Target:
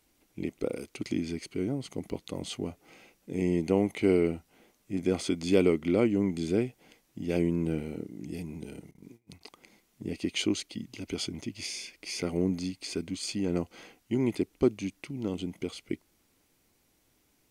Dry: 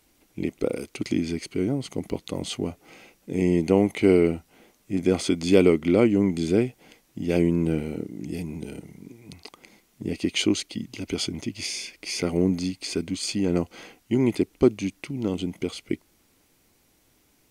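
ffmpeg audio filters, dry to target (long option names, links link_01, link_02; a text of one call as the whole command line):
ffmpeg -i in.wav -filter_complex "[0:a]asettb=1/sr,asplit=3[link_01][link_02][link_03];[link_01]atrim=end=8.914[link_04];[link_02]atrim=start=8.91:end=9.41,asetpts=PTS-STARTPTS,afade=type=in:duration=0.004:curve=qsin,afade=type=out:start_time=0.496:duration=0.004:curve=qsin,agate=range=-23dB:threshold=-44dB:ratio=16:detection=peak[link_05];[link_03]atrim=start=9.406[link_06];[link_04][link_05]acrossfade=duration=0.004:curve1=hsin:curve2=qsin[link_07];[link_07][link_06]acrossfade=duration=0.004:curve1=qsin:curve2=hsin,volume=-6dB" out.wav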